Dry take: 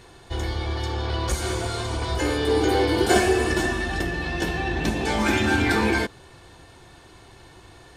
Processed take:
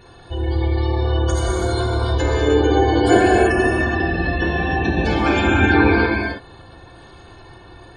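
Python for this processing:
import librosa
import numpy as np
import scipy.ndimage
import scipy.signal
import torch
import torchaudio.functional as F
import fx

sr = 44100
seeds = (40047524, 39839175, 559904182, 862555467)

y = fx.spec_gate(x, sr, threshold_db=-20, keep='strong')
y = fx.notch(y, sr, hz=2000.0, q=7.3)
y = fx.rev_gated(y, sr, seeds[0], gate_ms=350, shape='flat', drr_db=-2.5)
y = y * 10.0 ** (2.0 / 20.0)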